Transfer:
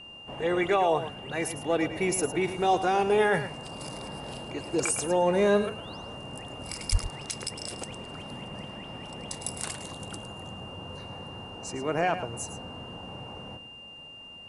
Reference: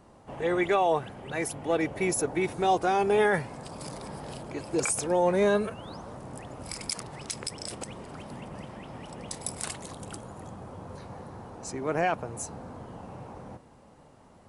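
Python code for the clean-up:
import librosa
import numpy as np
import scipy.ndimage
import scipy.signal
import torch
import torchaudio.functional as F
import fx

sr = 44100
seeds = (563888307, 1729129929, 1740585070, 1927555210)

y = fx.notch(x, sr, hz=2800.0, q=30.0)
y = fx.highpass(y, sr, hz=140.0, slope=24, at=(6.91, 7.03), fade=0.02)
y = fx.fix_echo_inverse(y, sr, delay_ms=108, level_db=-11.5)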